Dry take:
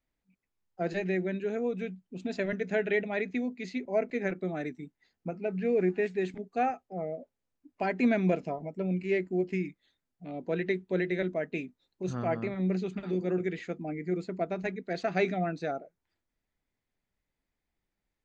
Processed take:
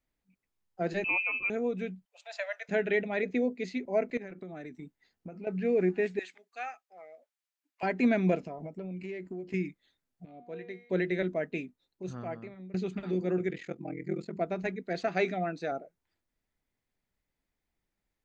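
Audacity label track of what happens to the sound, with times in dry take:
1.040000	1.500000	inverted band carrier 2800 Hz
2.050000	2.690000	steep high-pass 570 Hz 72 dB/oct
3.230000	3.640000	bell 500 Hz +10.5 dB 0.74 oct
4.170000	5.470000	compressor 12:1, threshold -38 dBFS
6.190000	7.830000	HPF 1400 Hz
8.460000	9.540000	compressor 10:1, threshold -35 dBFS
10.250000	10.900000	resonator 240 Hz, decay 0.96 s, mix 80%
11.440000	12.740000	fade out, to -22 dB
13.490000	14.370000	ring modulator 21 Hz
15.080000	15.720000	low shelf 130 Hz -12 dB

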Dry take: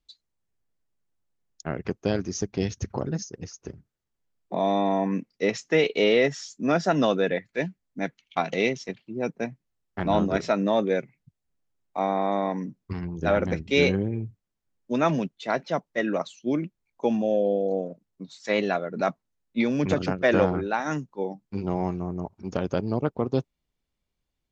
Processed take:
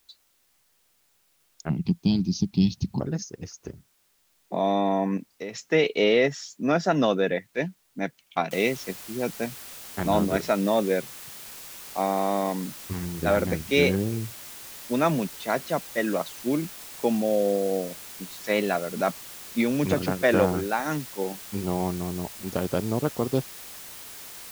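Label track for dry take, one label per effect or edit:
1.690000	3.000000	EQ curve 110 Hz 0 dB, 170 Hz +13 dB, 330 Hz -2 dB, 530 Hz -22 dB, 880 Hz -4 dB, 1600 Hz -27 dB, 2500 Hz -3 dB, 4300 Hz +11 dB, 7900 Hz -17 dB
5.170000	5.580000	compressor 5:1, threshold -31 dBFS
8.510000	8.510000	noise floor step -67 dB -42 dB

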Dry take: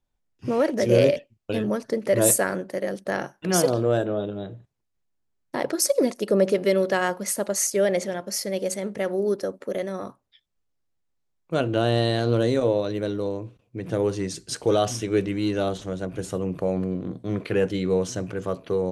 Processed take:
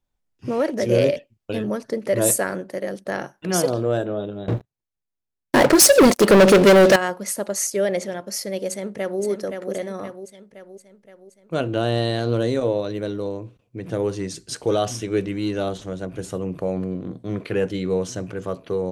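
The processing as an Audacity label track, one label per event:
4.480000	6.960000	sample leveller passes 5
8.680000	9.210000	echo throw 0.52 s, feedback 55%, level -6 dB

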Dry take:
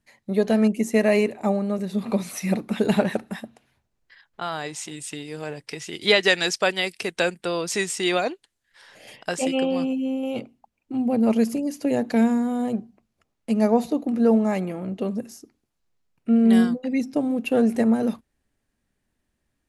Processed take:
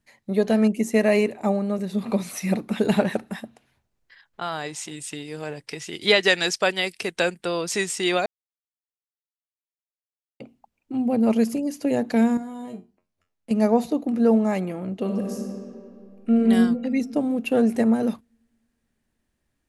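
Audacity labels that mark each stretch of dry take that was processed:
8.260000	10.400000	mute
12.370000	13.510000	resonator 89 Hz, decay 0.23 s, mix 90%
15.010000	16.360000	reverb throw, RT60 2.5 s, DRR 1 dB

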